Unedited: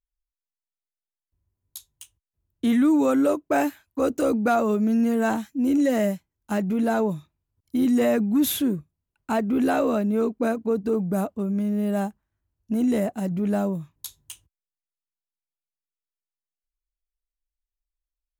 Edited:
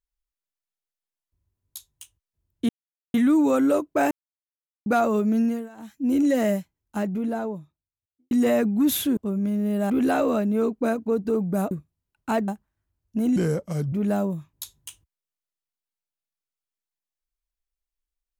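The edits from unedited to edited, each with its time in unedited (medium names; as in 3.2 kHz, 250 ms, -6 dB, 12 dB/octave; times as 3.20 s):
2.69 s: insert silence 0.45 s
3.66–4.41 s: mute
4.96–5.60 s: dip -23.5 dB, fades 0.28 s
6.10–7.86 s: studio fade out
8.72–9.49 s: swap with 11.30–12.03 s
12.91–13.35 s: speed 78%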